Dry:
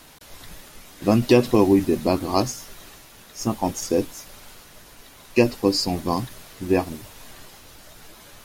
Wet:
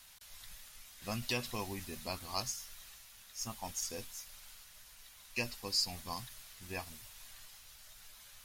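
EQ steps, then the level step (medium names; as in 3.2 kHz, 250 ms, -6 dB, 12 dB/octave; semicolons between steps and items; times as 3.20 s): amplifier tone stack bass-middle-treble 10-0-10; peaking EQ 250 Hz +9 dB 0.56 oct; -6.5 dB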